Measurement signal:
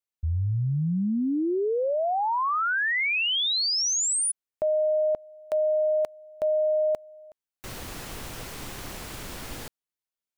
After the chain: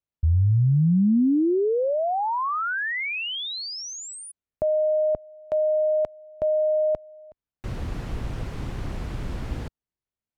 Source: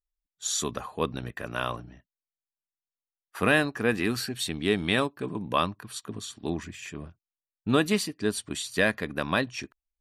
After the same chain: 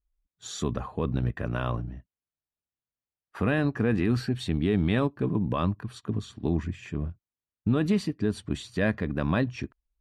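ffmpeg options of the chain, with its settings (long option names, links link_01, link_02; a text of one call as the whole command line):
ffmpeg -i in.wav -af "highpass=frequency=52:poles=1,aemphasis=mode=reproduction:type=riaa,alimiter=limit=-15.5dB:level=0:latency=1:release=41" out.wav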